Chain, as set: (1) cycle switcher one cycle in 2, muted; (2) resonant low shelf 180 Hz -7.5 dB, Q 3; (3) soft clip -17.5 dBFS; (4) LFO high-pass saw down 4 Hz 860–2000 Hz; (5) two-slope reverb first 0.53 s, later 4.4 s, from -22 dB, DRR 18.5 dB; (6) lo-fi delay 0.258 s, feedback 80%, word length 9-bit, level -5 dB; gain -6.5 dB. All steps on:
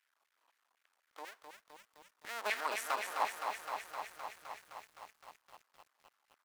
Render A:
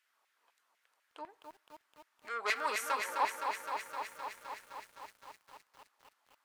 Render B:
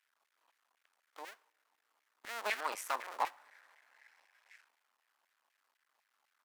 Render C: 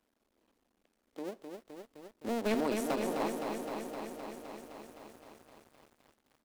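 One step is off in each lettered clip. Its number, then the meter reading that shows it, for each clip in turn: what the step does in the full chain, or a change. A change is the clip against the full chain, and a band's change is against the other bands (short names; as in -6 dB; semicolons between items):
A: 1, loudness change +3.0 LU; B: 6, crest factor change +2.0 dB; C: 4, 250 Hz band +26.5 dB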